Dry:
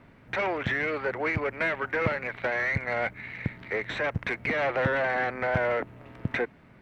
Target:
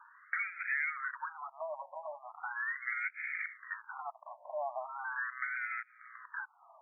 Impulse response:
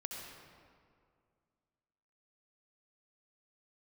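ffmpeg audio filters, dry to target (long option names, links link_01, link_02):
-filter_complex "[0:a]acrossover=split=2900[link_01][link_02];[link_01]acompressor=threshold=-38dB:ratio=6[link_03];[link_02]crystalizer=i=3.5:c=0[link_04];[link_03][link_04]amix=inputs=2:normalize=0,highshelf=frequency=3600:width_type=q:width=3:gain=9.5,afftfilt=real='re*between(b*sr/1024,780*pow(1800/780,0.5+0.5*sin(2*PI*0.39*pts/sr))/1.41,780*pow(1800/780,0.5+0.5*sin(2*PI*0.39*pts/sr))*1.41)':imag='im*between(b*sr/1024,780*pow(1800/780,0.5+0.5*sin(2*PI*0.39*pts/sr))/1.41,780*pow(1800/780,0.5+0.5*sin(2*PI*0.39*pts/sr))*1.41)':win_size=1024:overlap=0.75,volume=7dB"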